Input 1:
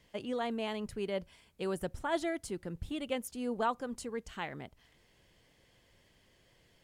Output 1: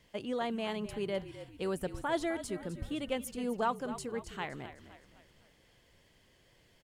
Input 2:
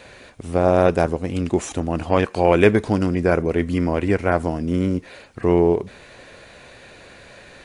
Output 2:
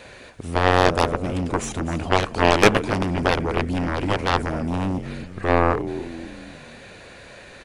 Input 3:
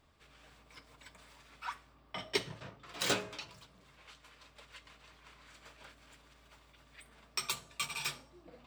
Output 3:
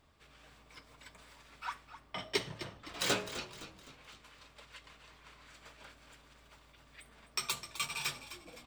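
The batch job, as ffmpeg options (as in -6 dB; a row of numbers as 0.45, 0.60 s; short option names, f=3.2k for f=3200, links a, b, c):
-filter_complex "[0:a]asplit=6[a][b][c][d][e][f];[b]adelay=257,afreqshift=-48,volume=-13dB[g];[c]adelay=514,afreqshift=-96,volume=-19.7dB[h];[d]adelay=771,afreqshift=-144,volume=-26.5dB[i];[e]adelay=1028,afreqshift=-192,volume=-33.2dB[j];[f]adelay=1285,afreqshift=-240,volume=-40dB[k];[a][g][h][i][j][k]amix=inputs=6:normalize=0,aeval=exprs='0.944*(cos(1*acos(clip(val(0)/0.944,-1,1)))-cos(1*PI/2))+0.299*(cos(7*acos(clip(val(0)/0.944,-1,1)))-cos(7*PI/2))':c=same,volume=-1dB"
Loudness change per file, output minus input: +0.5, -2.0, 0.0 LU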